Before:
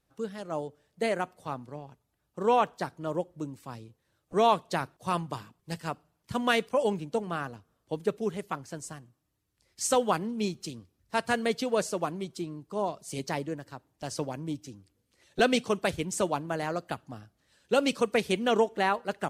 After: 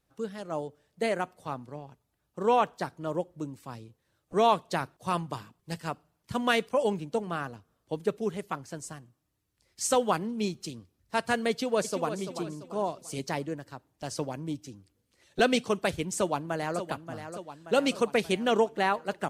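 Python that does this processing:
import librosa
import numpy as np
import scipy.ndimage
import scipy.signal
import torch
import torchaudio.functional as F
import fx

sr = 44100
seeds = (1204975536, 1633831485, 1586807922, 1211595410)

y = fx.echo_throw(x, sr, start_s=11.5, length_s=0.68, ms=340, feedback_pct=40, wet_db=-9.5)
y = fx.echo_throw(y, sr, start_s=16.16, length_s=0.71, ms=580, feedback_pct=60, wet_db=-9.5)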